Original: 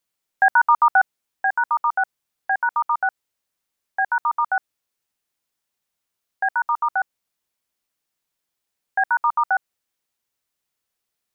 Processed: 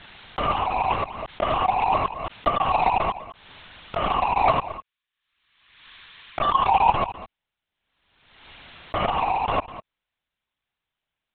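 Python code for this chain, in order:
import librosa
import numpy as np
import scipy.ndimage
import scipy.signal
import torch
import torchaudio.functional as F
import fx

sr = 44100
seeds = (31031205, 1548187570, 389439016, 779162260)

y = fx.partial_stretch(x, sr, pct=82)
y = fx.highpass(y, sr, hz=1200.0, slope=12, at=(4.57, 6.95))
y = fx.leveller(y, sr, passes=5)
y = fx.over_compress(y, sr, threshold_db=-19.0, ratio=-0.5)
y = y + 10.0 ** (-14.5 / 20.0) * np.pad(y, (int(205 * sr / 1000.0), 0))[:len(y)]
y = fx.lpc_vocoder(y, sr, seeds[0], excitation='whisper', order=10)
y = fx.pre_swell(y, sr, db_per_s=50.0)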